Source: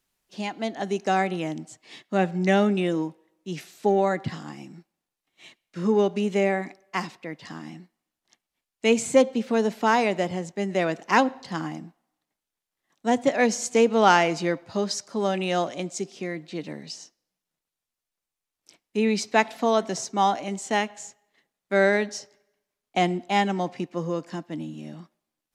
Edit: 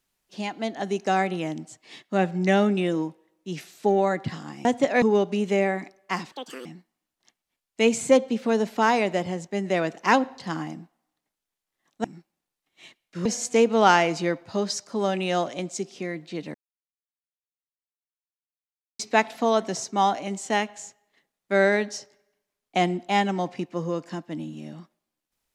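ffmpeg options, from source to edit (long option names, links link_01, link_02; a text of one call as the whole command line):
ffmpeg -i in.wav -filter_complex "[0:a]asplit=9[link_01][link_02][link_03][link_04][link_05][link_06][link_07][link_08][link_09];[link_01]atrim=end=4.652[link_10];[link_02]atrim=start=13.088:end=13.462[link_11];[link_03]atrim=start=5.858:end=7.164[link_12];[link_04]atrim=start=7.16:end=7.7,asetpts=PTS-STARTPTS,asetrate=71442,aresample=44100[link_13];[link_05]atrim=start=7.696:end=13.092[link_14];[link_06]atrim=start=4.648:end=5.862[link_15];[link_07]atrim=start=13.458:end=16.75,asetpts=PTS-STARTPTS,afade=type=out:start_time=3.288:duration=0.004:curve=hsin[link_16];[link_08]atrim=start=16.75:end=19.2,asetpts=PTS-STARTPTS,volume=0[link_17];[link_09]atrim=start=19.2,asetpts=PTS-STARTPTS,afade=type=in:duration=0.004:curve=hsin[link_18];[link_10][link_11]acrossfade=duration=0.004:curve1=hsin:curve2=hsin[link_19];[link_19][link_12]acrossfade=duration=0.004:curve1=hsin:curve2=hsin[link_20];[link_20][link_13]acrossfade=duration=0.004:curve1=hsin:curve2=hsin[link_21];[link_21][link_14]acrossfade=duration=0.004:curve1=hsin:curve2=hsin[link_22];[link_22][link_15]acrossfade=duration=0.004:curve1=hsin:curve2=hsin[link_23];[link_16][link_17][link_18]concat=n=3:v=0:a=1[link_24];[link_23][link_24]acrossfade=duration=0.004:curve1=hsin:curve2=hsin" out.wav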